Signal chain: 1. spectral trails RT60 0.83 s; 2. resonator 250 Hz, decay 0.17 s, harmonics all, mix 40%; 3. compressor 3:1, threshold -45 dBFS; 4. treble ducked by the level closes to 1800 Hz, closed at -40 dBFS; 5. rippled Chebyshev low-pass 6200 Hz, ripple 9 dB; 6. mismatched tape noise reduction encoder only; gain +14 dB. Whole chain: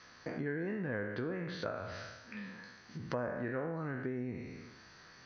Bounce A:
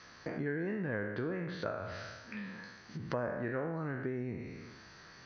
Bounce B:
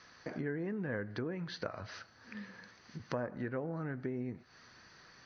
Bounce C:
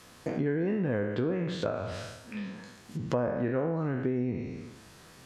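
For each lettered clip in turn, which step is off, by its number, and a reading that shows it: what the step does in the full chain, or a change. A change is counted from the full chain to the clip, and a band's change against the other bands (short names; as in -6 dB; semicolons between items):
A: 2, 4 kHz band -1.5 dB; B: 1, 4 kHz band +2.5 dB; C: 5, 2 kHz band -7.5 dB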